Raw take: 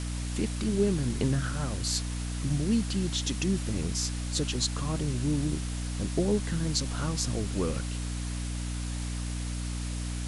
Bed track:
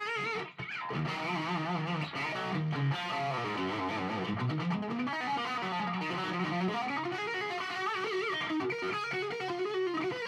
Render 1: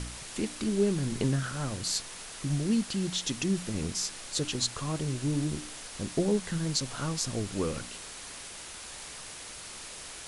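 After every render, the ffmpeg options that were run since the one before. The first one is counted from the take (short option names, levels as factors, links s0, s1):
-af "bandreject=f=60:t=h:w=4,bandreject=f=120:t=h:w=4,bandreject=f=180:t=h:w=4,bandreject=f=240:t=h:w=4,bandreject=f=300:t=h:w=4"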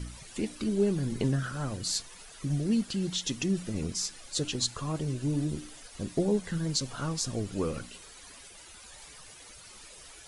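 -af "afftdn=nr=12:nf=-44"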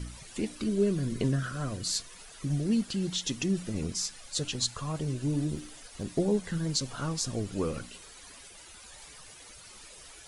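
-filter_complex "[0:a]asettb=1/sr,asplit=3[s0][s1][s2];[s0]atrim=end=0.664[s3];[s1]atrim=start=0.66:end=2.18,asetpts=PTS-STARTPTS,afade=t=in:d=0.004:c=qsin,afade=t=out:st=1.516:d=0.004:c=qsin,asuperstop=centerf=840:order=8:qfactor=6.1[s4];[s2]atrim=start=2.176[s5];[s3][s4]acrossfade=d=0.004:c1=hsin:c2=qsin[s6];[s6][s5]acrossfade=d=0.004:c1=qsin:c2=hsin,asettb=1/sr,asplit=3[s7][s8][s9];[s7]atrim=end=4.014[s10];[s8]atrim=start=4.01:end=5.01,asetpts=PTS-STARTPTS,afade=t=in:d=0.004:c=qsin,afade=t=out:st=0.996:d=0.004:c=qsin,equalizer=f=330:t=o:w=0.77:g=-6.5[s11];[s9]atrim=start=5.006[s12];[s10][s11]acrossfade=d=0.004:c1=hsin:c2=qsin[s13];[s13][s12]acrossfade=d=0.004:c1=qsin:c2=hsin,asettb=1/sr,asplit=3[s14][s15][s16];[s14]atrim=end=5.554[s17];[s15]atrim=start=5.55:end=6.05,asetpts=PTS-STARTPTS,afade=t=in:d=0.004:c=qsin,afade=t=out:st=0.496:d=0.004:c=qsin,aeval=exprs='clip(val(0),-1,0.0211)':c=same[s18];[s16]atrim=start=6.046[s19];[s17][s18]acrossfade=d=0.004:c1=hsin:c2=qsin[s20];[s20][s19]acrossfade=d=0.004:c1=qsin:c2=hsin"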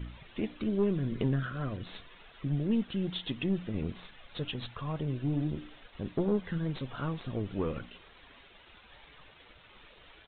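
-af "aeval=exprs='(tanh(10*val(0)+0.4)-tanh(0.4))/10':c=same,aresample=8000,aeval=exprs='val(0)*gte(abs(val(0)),0.0015)':c=same,aresample=44100"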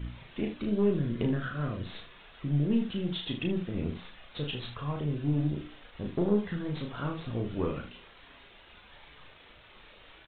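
-af "aecho=1:1:34|76:0.631|0.316"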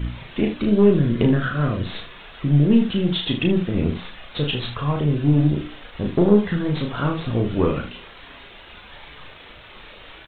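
-af "volume=3.76"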